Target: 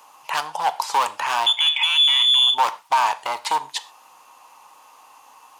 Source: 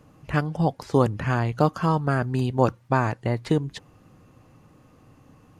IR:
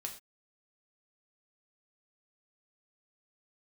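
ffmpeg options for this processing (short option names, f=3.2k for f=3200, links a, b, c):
-filter_complex "[0:a]volume=22.5dB,asoftclip=hard,volume=-22.5dB,asettb=1/sr,asplit=3[a][b][c];[a]atrim=end=1.464[d];[b]atrim=start=1.46:end=2.54,asetpts=PTS-STARTPTS,afade=t=in:d=0.004:c=qsin,afade=t=out:st=1.076:d=0.004:c=qsin,lowpass=f=3.1k:t=q:w=0.5098,lowpass=f=3.1k:t=q:w=0.6013,lowpass=f=3.1k:t=q:w=0.9,lowpass=f=3.1k:t=q:w=2.563,afreqshift=-3600[e];[c]atrim=start=2.536[f];[d][e]acrossfade=d=0.004:c1=hsin:c2=qsin[g];[g][f]acrossfade=d=0.004:c1=qsin:c2=hsin,aexciter=amount=1.7:drive=9.2:freq=2.5k,highpass=f=920:t=q:w=8.1,asplit=2[h][i];[1:a]atrim=start_sample=2205,highshelf=f=8.2k:g=-10[j];[i][j]afir=irnorm=-1:irlink=0,volume=-2dB[k];[h][k]amix=inputs=2:normalize=0,alimiter=limit=-9.5dB:level=0:latency=1:release=15"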